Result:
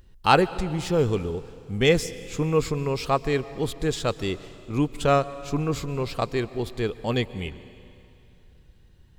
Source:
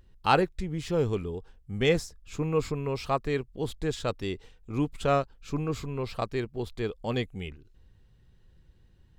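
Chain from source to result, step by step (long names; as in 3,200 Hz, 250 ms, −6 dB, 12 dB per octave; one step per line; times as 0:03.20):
high-shelf EQ 4,800 Hz +4.5 dB
convolution reverb RT60 2.7 s, pre-delay 122 ms, DRR 16 dB
level +4.5 dB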